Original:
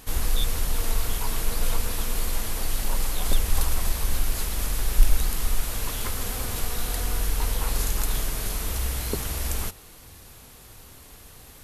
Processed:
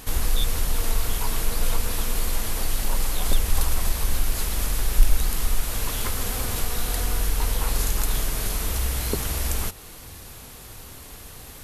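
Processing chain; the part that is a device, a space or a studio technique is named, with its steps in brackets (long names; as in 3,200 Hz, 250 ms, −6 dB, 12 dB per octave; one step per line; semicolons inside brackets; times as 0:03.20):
parallel compression (in parallel at −1 dB: downward compressor, threshold −33 dBFS, peak gain reduction 22.5 dB)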